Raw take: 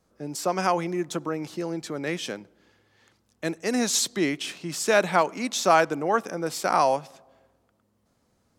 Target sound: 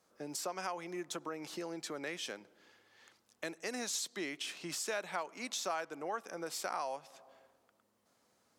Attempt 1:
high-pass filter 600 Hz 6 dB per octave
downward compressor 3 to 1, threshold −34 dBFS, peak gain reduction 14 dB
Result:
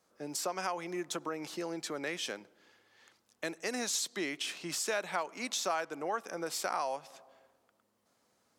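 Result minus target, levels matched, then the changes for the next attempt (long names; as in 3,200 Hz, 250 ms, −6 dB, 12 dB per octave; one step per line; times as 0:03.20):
downward compressor: peak gain reduction −4 dB
change: downward compressor 3 to 1, threshold −40 dBFS, peak gain reduction 18 dB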